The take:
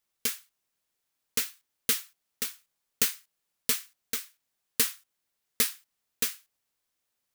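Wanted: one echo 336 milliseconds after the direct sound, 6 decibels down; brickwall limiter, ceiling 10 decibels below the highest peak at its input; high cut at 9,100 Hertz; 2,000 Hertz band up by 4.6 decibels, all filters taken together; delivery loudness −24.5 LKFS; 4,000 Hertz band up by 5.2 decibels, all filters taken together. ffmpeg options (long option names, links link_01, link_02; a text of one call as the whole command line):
ffmpeg -i in.wav -af "lowpass=9100,equalizer=frequency=2000:width_type=o:gain=4,equalizer=frequency=4000:width_type=o:gain=5.5,alimiter=limit=-17.5dB:level=0:latency=1,aecho=1:1:336:0.501,volume=10.5dB" out.wav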